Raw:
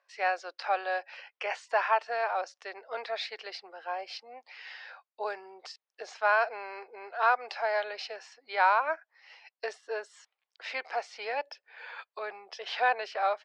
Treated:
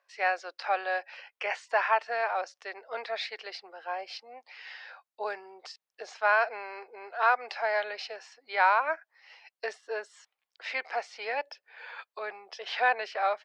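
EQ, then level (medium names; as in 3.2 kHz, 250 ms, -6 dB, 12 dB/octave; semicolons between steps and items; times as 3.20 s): dynamic bell 2 kHz, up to +4 dB, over -44 dBFS, Q 2.2; dynamic bell 210 Hz, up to +4 dB, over -52 dBFS, Q 2.4; 0.0 dB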